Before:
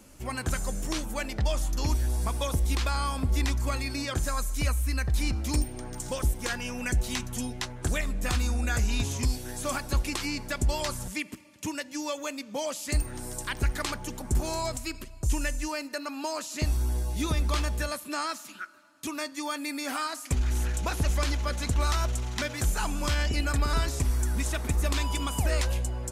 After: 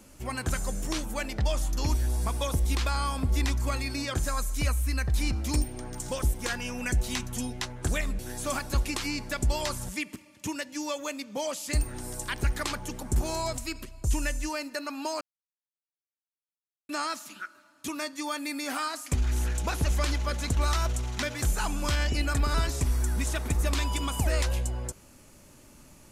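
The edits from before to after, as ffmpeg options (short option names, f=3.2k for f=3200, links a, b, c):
-filter_complex "[0:a]asplit=4[a][b][c][d];[a]atrim=end=8.192[e];[b]atrim=start=9.378:end=16.4,asetpts=PTS-STARTPTS,afade=t=out:st=7.018:d=0.004:c=hsin[f];[c]atrim=start=16.4:end=18.08,asetpts=PTS-STARTPTS,volume=0[g];[d]atrim=start=18.08,asetpts=PTS-STARTPTS,afade=t=in:d=0.004:c=hsin[h];[f][g][h]concat=n=3:v=0:a=1[i];[e][i]acrossfade=d=0.004:c1=hsin:c2=hsin"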